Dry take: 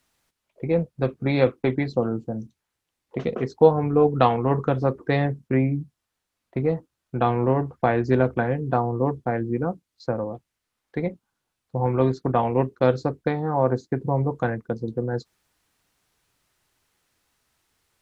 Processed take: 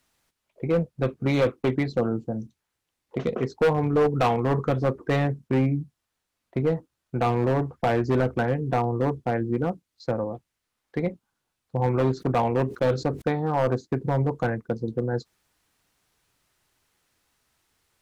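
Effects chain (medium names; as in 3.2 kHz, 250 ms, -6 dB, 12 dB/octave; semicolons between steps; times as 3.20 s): hard clipper -16 dBFS, distortion -10 dB; 12.14–13.22 s: decay stretcher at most 150 dB/s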